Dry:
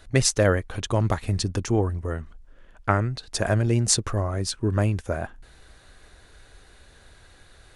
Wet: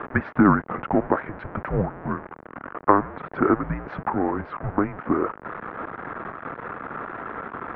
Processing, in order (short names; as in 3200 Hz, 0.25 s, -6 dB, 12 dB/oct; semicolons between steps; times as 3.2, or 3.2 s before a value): zero-crossing step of -27.5 dBFS; mistuned SSB -300 Hz 500–2000 Hz; wow and flutter 20 cents; gain +6.5 dB